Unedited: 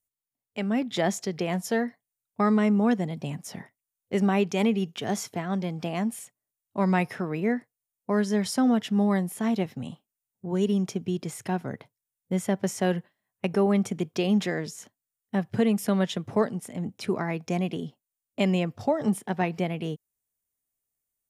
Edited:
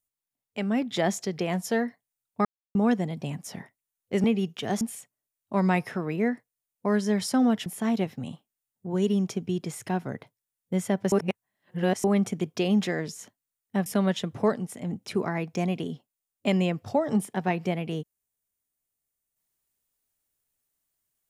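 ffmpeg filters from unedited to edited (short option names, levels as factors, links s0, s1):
-filter_complex "[0:a]asplit=9[s0][s1][s2][s3][s4][s5][s6][s7][s8];[s0]atrim=end=2.45,asetpts=PTS-STARTPTS,afade=t=out:st=2.446:d=0.004:c=hsin[s9];[s1]atrim=start=2.45:end=2.75,asetpts=PTS-STARTPTS,volume=0[s10];[s2]atrim=start=2.75:end=4.242,asetpts=PTS-STARTPTS,afade=t=in:d=0.004:c=hsin[s11];[s3]atrim=start=4.628:end=5.202[s12];[s4]atrim=start=6.048:end=8.902[s13];[s5]atrim=start=9.248:end=12.712[s14];[s6]atrim=start=12.708:end=13.632,asetpts=PTS-STARTPTS,areverse[s15];[s7]atrim=start=13.628:end=15.452[s16];[s8]atrim=start=15.788[s17];[s9][s10][s11]concat=n=3:v=0:a=1[s18];[s18][s12]acrossfade=d=0.004:c1=hsin:c2=hsin[s19];[s19][s13]acrossfade=d=0.004:c1=hsin:c2=hsin[s20];[s20][s14]acrossfade=d=0.004:c1=hsin:c2=hsin[s21];[s21][s15]acrossfade=d=0.004:c1=hsin:c2=hsin[s22];[s22][s16]acrossfade=d=0.004:c1=hsin:c2=hsin[s23];[s23][s17]acrossfade=d=0.004:c1=hsin:c2=hsin"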